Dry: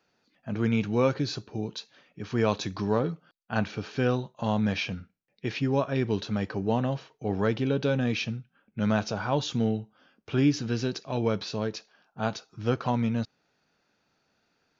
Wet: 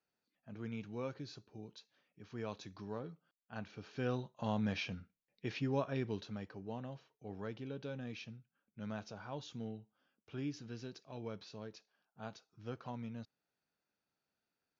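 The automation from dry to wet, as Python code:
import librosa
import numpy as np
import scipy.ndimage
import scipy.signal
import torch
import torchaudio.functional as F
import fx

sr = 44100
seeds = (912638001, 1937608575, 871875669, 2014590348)

y = fx.gain(x, sr, db=fx.line((3.64, -18.0), (4.21, -9.5), (5.89, -9.5), (6.57, -18.0)))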